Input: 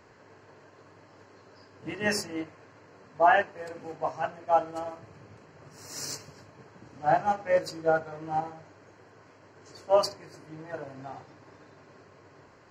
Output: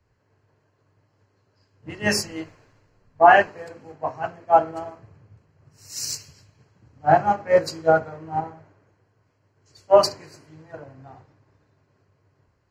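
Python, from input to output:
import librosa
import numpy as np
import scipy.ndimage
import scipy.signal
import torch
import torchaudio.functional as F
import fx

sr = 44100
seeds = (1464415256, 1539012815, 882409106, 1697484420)

y = fx.low_shelf(x, sr, hz=130.0, db=8.5)
y = fx.dmg_noise_colour(y, sr, seeds[0], colour='brown', level_db=-62.0, at=(2.22, 3.48), fade=0.02)
y = fx.band_widen(y, sr, depth_pct=70)
y = F.gain(torch.from_numpy(y), 1.5).numpy()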